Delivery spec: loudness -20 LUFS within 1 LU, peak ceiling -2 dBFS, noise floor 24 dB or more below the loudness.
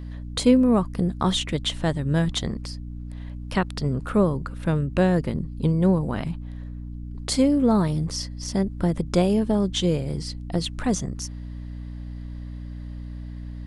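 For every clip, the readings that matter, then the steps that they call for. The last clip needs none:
hum 60 Hz; harmonics up to 300 Hz; hum level -33 dBFS; loudness -24.0 LUFS; peak -6.5 dBFS; loudness target -20.0 LUFS
-> notches 60/120/180/240/300 Hz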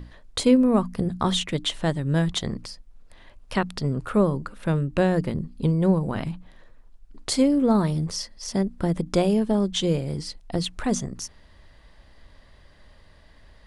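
hum none; loudness -24.5 LUFS; peak -7.0 dBFS; loudness target -20.0 LUFS
-> gain +4.5 dB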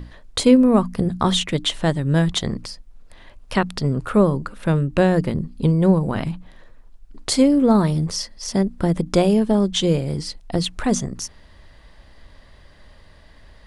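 loudness -20.0 LUFS; peak -2.5 dBFS; noise floor -48 dBFS

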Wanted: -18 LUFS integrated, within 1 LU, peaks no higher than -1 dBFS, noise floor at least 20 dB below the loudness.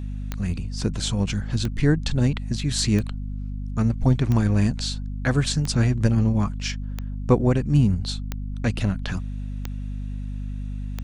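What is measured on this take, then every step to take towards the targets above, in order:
clicks 9; hum 50 Hz; harmonics up to 250 Hz; hum level -27 dBFS; loudness -24.5 LUFS; peak -5.0 dBFS; loudness target -18.0 LUFS
-> de-click; notches 50/100/150/200/250 Hz; gain +6.5 dB; limiter -1 dBFS

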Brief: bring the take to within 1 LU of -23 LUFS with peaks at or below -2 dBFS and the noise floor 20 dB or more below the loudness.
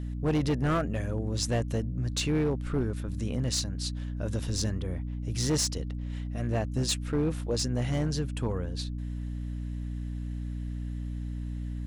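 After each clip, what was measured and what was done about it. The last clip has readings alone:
clipped 1.6%; flat tops at -21.5 dBFS; hum 60 Hz; harmonics up to 300 Hz; hum level -32 dBFS; loudness -31.0 LUFS; peak -21.5 dBFS; loudness target -23.0 LUFS
-> clip repair -21.5 dBFS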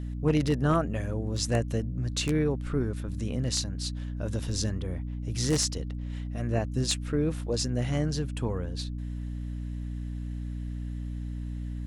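clipped 0.0%; hum 60 Hz; harmonics up to 300 Hz; hum level -32 dBFS
-> de-hum 60 Hz, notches 5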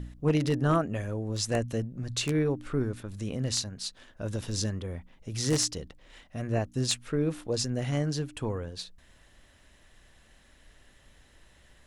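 hum none; loudness -30.5 LUFS; peak -12.5 dBFS; loudness target -23.0 LUFS
-> gain +7.5 dB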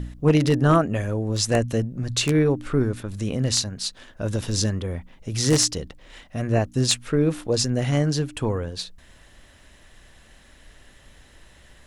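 loudness -23.0 LUFS; peak -5.0 dBFS; noise floor -52 dBFS

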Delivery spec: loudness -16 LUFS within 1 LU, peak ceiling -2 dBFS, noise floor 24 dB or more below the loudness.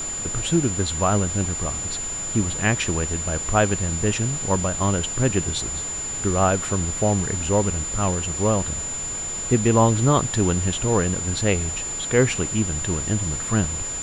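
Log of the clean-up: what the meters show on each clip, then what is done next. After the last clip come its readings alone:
steady tone 7100 Hz; tone level -27 dBFS; noise floor -29 dBFS; noise floor target -46 dBFS; loudness -22.0 LUFS; peak -5.0 dBFS; loudness target -16.0 LUFS
-> notch 7100 Hz, Q 30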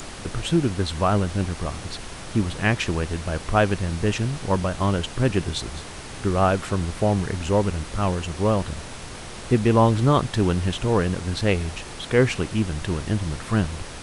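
steady tone none; noise floor -37 dBFS; noise floor target -48 dBFS
-> noise print and reduce 11 dB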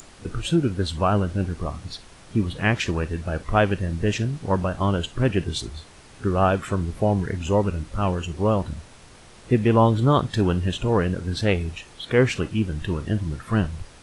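noise floor -47 dBFS; noise floor target -48 dBFS
-> noise print and reduce 6 dB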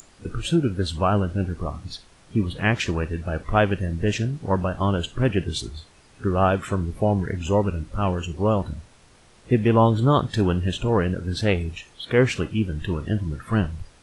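noise floor -53 dBFS; loudness -23.5 LUFS; peak -5.5 dBFS; loudness target -16.0 LUFS
-> gain +7.5 dB; limiter -2 dBFS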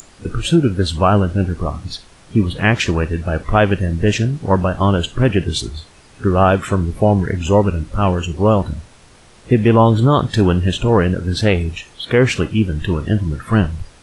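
loudness -16.5 LUFS; peak -2.0 dBFS; noise floor -46 dBFS

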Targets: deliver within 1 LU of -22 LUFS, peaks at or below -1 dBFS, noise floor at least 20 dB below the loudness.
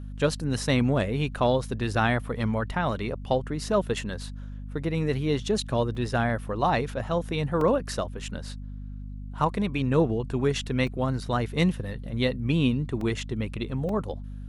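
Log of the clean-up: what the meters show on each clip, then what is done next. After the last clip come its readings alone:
dropouts 5; longest dropout 2.8 ms; hum 50 Hz; harmonics up to 250 Hz; hum level -35 dBFS; loudness -27.0 LUFS; peak -10.0 dBFS; loudness target -22.0 LUFS
-> interpolate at 5.95/7.61/10.87/13.01/13.89, 2.8 ms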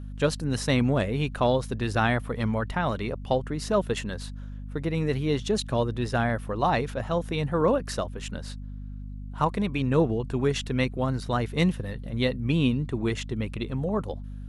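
dropouts 0; hum 50 Hz; harmonics up to 250 Hz; hum level -35 dBFS
-> notches 50/100/150/200/250 Hz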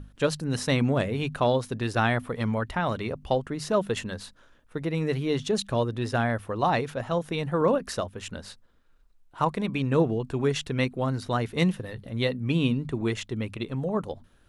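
hum none; loudness -27.5 LUFS; peak -10.0 dBFS; loudness target -22.0 LUFS
-> gain +5.5 dB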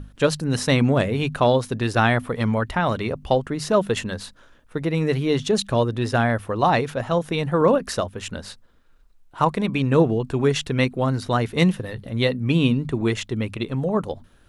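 loudness -22.0 LUFS; peak -4.5 dBFS; noise floor -54 dBFS

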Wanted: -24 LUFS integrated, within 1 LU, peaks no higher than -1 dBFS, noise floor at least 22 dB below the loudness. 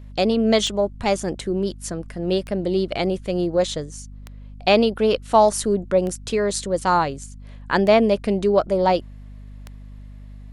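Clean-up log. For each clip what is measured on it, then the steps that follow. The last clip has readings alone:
clicks 6; hum 50 Hz; harmonics up to 250 Hz; hum level -36 dBFS; loudness -21.0 LUFS; peak -3.5 dBFS; loudness target -24.0 LUFS
-> de-click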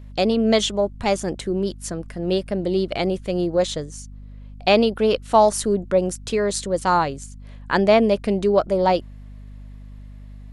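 clicks 0; hum 50 Hz; harmonics up to 250 Hz; hum level -36 dBFS
-> de-hum 50 Hz, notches 5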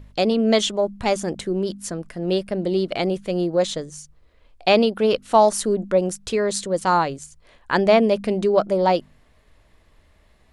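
hum none; loudness -21.0 LUFS; peak -4.0 dBFS; loudness target -24.0 LUFS
-> gain -3 dB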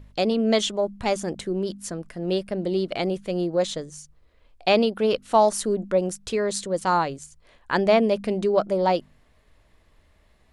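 loudness -24.0 LUFS; peak -7.0 dBFS; noise floor -60 dBFS

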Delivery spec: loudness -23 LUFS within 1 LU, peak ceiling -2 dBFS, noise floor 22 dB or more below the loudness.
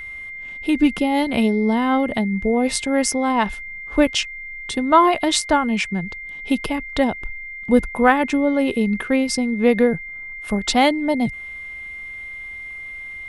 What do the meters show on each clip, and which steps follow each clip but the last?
steady tone 2100 Hz; tone level -31 dBFS; loudness -19.5 LUFS; peak -1.5 dBFS; loudness target -23.0 LUFS
-> notch 2100 Hz, Q 30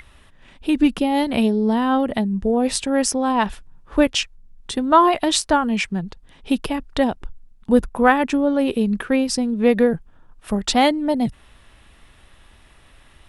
steady tone none; loudness -20.0 LUFS; peak -2.0 dBFS; loudness target -23.0 LUFS
-> gain -3 dB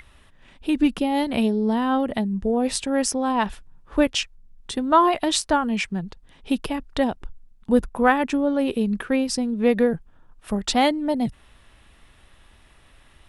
loudness -23.0 LUFS; peak -5.0 dBFS; noise floor -54 dBFS

